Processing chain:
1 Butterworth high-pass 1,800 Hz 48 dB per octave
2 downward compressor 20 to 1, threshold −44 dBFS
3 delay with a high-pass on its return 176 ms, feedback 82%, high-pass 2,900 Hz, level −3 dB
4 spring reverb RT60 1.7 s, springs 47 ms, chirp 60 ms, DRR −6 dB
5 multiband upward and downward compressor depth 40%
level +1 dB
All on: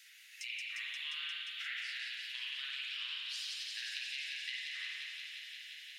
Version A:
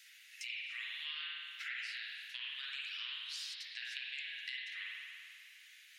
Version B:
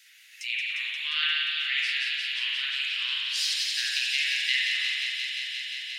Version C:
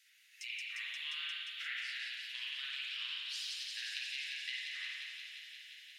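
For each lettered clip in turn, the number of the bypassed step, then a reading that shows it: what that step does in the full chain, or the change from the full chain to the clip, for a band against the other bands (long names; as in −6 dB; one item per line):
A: 3, change in momentary loudness spread +4 LU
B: 2, average gain reduction 10.5 dB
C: 5, change in momentary loudness spread +1 LU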